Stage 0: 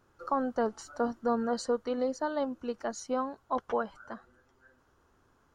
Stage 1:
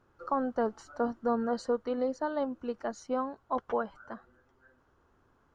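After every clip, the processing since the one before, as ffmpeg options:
-af "lowpass=f=2.6k:p=1"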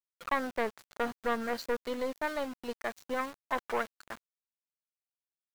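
-af "aeval=exprs='(tanh(14.1*val(0)+0.6)-tanh(0.6))/14.1':c=same,equalizer=f=125:t=o:w=1:g=-5,equalizer=f=2k:t=o:w=1:g=11,equalizer=f=4k:t=o:w=1:g=8,aeval=exprs='val(0)*gte(abs(val(0)),0.00841)':c=same"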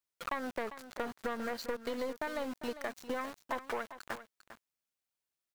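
-filter_complex "[0:a]asplit=2[a][b];[b]alimiter=level_in=2.5dB:limit=-24dB:level=0:latency=1:release=154,volume=-2.5dB,volume=2dB[c];[a][c]amix=inputs=2:normalize=0,acompressor=threshold=-32dB:ratio=3,aecho=1:1:399:0.224,volume=-2.5dB"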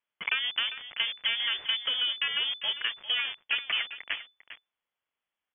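-af "lowpass=f=3k:t=q:w=0.5098,lowpass=f=3k:t=q:w=0.6013,lowpass=f=3k:t=q:w=0.9,lowpass=f=3k:t=q:w=2.563,afreqshift=-3500,volume=7.5dB"

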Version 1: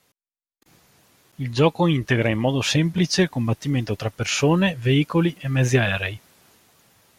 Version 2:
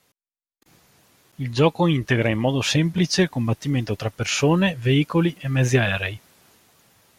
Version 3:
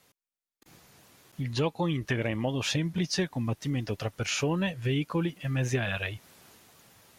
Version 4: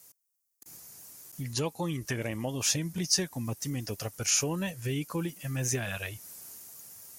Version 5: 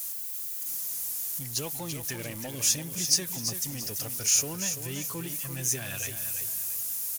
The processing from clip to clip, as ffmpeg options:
-af anull
-af "acompressor=threshold=-33dB:ratio=2"
-af "aexciter=amount=5.8:drive=5.6:freq=5.1k,volume=-4dB"
-af "aeval=exprs='val(0)+0.5*0.0141*sgn(val(0))':c=same,crystalizer=i=3:c=0,aecho=1:1:338|676|1014|1352:0.376|0.128|0.0434|0.0148,volume=-7.5dB"

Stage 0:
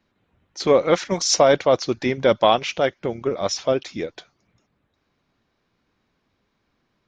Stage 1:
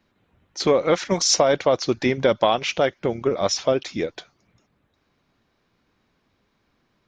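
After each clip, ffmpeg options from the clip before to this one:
-af "acompressor=threshold=-17dB:ratio=4,volume=2.5dB"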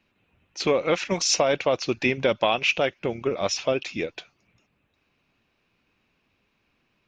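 -af "equalizer=f=2.6k:t=o:w=0.35:g=13.5,volume=-4dB"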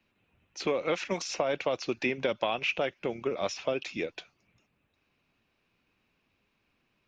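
-filter_complex "[0:a]acrossover=split=180|2700[a][b][c];[a]acompressor=threshold=-46dB:ratio=4[d];[b]acompressor=threshold=-21dB:ratio=4[e];[c]acompressor=threshold=-36dB:ratio=4[f];[d][e][f]amix=inputs=3:normalize=0,volume=-4dB"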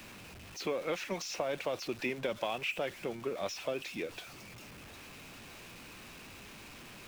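-af "aeval=exprs='val(0)+0.5*0.0126*sgn(val(0))':c=same,volume=-6.5dB"

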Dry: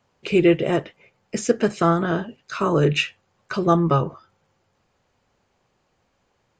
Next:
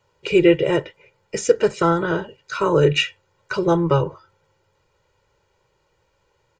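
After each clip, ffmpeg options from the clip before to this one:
-af "aecho=1:1:2.1:0.82"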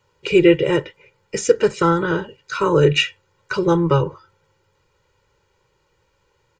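-af "equalizer=f=680:w=5.8:g=-13,volume=2dB"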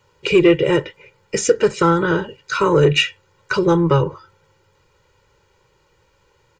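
-filter_complex "[0:a]asplit=2[a][b];[b]acompressor=threshold=-23dB:ratio=6,volume=-2dB[c];[a][c]amix=inputs=2:normalize=0,asoftclip=type=tanh:threshold=-2.5dB"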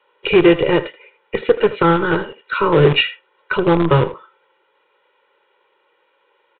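-filter_complex "[0:a]acrossover=split=340|2900[a][b][c];[a]acrusher=bits=4:dc=4:mix=0:aa=0.000001[d];[d][b][c]amix=inputs=3:normalize=0,asplit=2[e][f];[f]adelay=80,highpass=300,lowpass=3.4k,asoftclip=type=hard:threshold=-12dB,volume=-13dB[g];[e][g]amix=inputs=2:normalize=0,aresample=8000,aresample=44100,volume=1dB"

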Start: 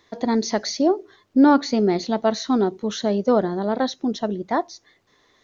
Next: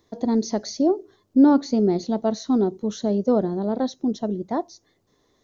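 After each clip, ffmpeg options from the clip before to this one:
-af "equalizer=f=2.1k:t=o:w=2.6:g=-14.5,volume=1.5dB"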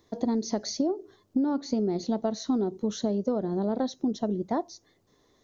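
-af "acompressor=threshold=-23dB:ratio=12"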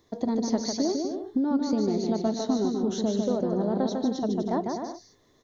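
-af "aecho=1:1:150|247.5|310.9|352.1|378.8:0.631|0.398|0.251|0.158|0.1"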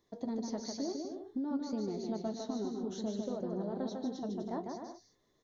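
-af "flanger=delay=4.7:depth=9.8:regen=-53:speed=0.57:shape=triangular,volume=-7dB"

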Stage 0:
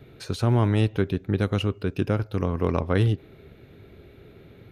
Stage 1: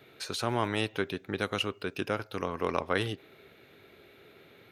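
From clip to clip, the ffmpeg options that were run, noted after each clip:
-af "highpass=f=1k:p=1,volume=2.5dB"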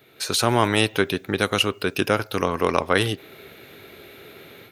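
-af "highshelf=f=6.7k:g=10,dynaudnorm=f=150:g=3:m=11dB"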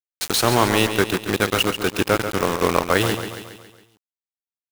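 -af "acrusher=bits=3:mix=0:aa=0.000001,aecho=1:1:138|276|414|552|690|828:0.355|0.185|0.0959|0.0499|0.0259|0.0135,adynamicequalizer=threshold=0.0282:dfrequency=2100:dqfactor=0.7:tfrequency=2100:tqfactor=0.7:attack=5:release=100:ratio=0.375:range=1.5:mode=cutabove:tftype=highshelf,volume=1.5dB"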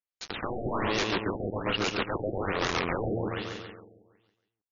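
-af "aeval=exprs='0.106*(abs(mod(val(0)/0.106+3,4)-2)-1)':c=same,aecho=1:1:322|644:0.237|0.0379,afftfilt=real='re*lt(b*sr/1024,740*pow(7200/740,0.5+0.5*sin(2*PI*1.2*pts/sr)))':imag='im*lt(b*sr/1024,740*pow(7200/740,0.5+0.5*sin(2*PI*1.2*pts/sr)))':win_size=1024:overlap=0.75"

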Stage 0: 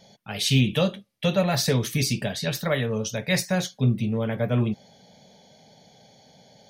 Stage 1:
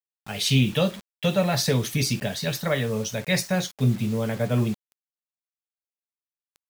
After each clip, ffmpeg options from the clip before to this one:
-af "acrusher=bits=6:mix=0:aa=0.000001"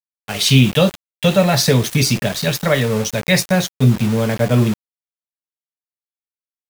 -af "aeval=exprs='val(0)*gte(abs(val(0)),0.0168)':c=same,volume=8.5dB"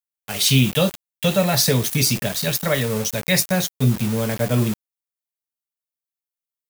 -af "highshelf=f=7.6k:g=12,volume=-5dB"

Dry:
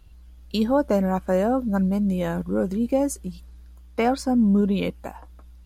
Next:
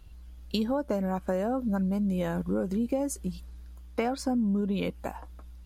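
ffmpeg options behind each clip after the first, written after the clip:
-af "acompressor=threshold=-25dB:ratio=6"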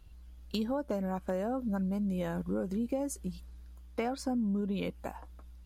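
-af "asoftclip=type=hard:threshold=-17dB,volume=-4.5dB"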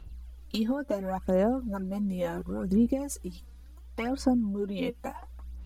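-af "aphaser=in_gain=1:out_gain=1:delay=4.2:decay=0.63:speed=0.71:type=sinusoidal,volume=1.5dB"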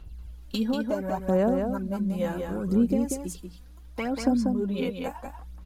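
-af "aecho=1:1:189:0.562,volume=1.5dB"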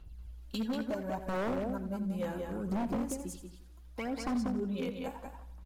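-af "aeval=exprs='0.0944*(abs(mod(val(0)/0.0944+3,4)-2)-1)':c=same,aecho=1:1:85|170|255|340|425:0.2|0.102|0.0519|0.0265|0.0135,volume=-7dB"

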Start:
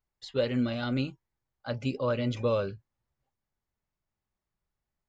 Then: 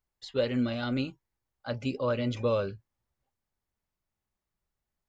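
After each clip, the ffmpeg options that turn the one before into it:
-af "equalizer=f=140:w=6.8:g=-5.5"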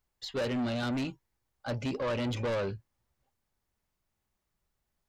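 -af "asoftclip=type=tanh:threshold=-33dB,volume=4.5dB"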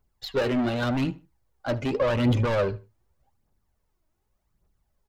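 -filter_complex "[0:a]aphaser=in_gain=1:out_gain=1:delay=3.3:decay=0.49:speed=0.86:type=triangular,asplit=2[a][b];[b]adynamicsmooth=sensitivity=8:basefreq=1.5k,volume=2dB[c];[a][c]amix=inputs=2:normalize=0,asplit=2[d][e];[e]adelay=75,lowpass=f=3.6k:p=1,volume=-19dB,asplit=2[f][g];[g]adelay=75,lowpass=f=3.6k:p=1,volume=0.27[h];[d][f][h]amix=inputs=3:normalize=0"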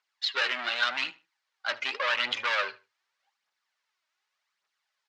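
-af "asuperpass=centerf=2800:order=4:qfactor=0.73,volume=8.5dB"

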